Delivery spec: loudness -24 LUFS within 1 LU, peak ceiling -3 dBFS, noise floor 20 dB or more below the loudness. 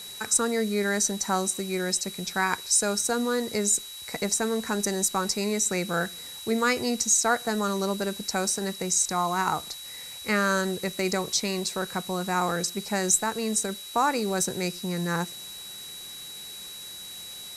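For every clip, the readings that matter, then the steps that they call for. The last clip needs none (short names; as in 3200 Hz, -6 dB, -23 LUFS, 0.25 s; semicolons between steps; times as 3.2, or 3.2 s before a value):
steady tone 3900 Hz; tone level -40 dBFS; noise floor -41 dBFS; noise floor target -46 dBFS; loudness -26.0 LUFS; peak -9.0 dBFS; loudness target -24.0 LUFS
-> notch 3900 Hz, Q 30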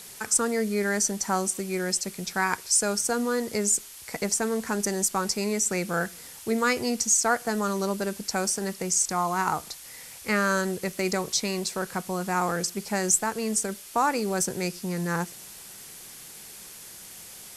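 steady tone none; noise floor -45 dBFS; noise floor target -46 dBFS
-> noise print and reduce 6 dB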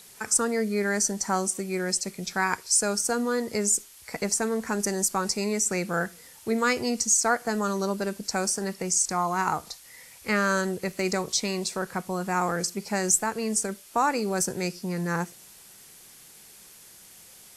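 noise floor -51 dBFS; loudness -26.0 LUFS; peak -9.5 dBFS; loudness target -24.0 LUFS
-> gain +2 dB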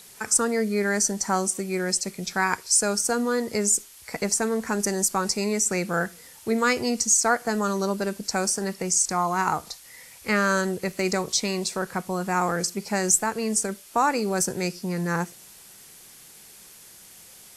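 loudness -24.0 LUFS; peak -7.5 dBFS; noise floor -49 dBFS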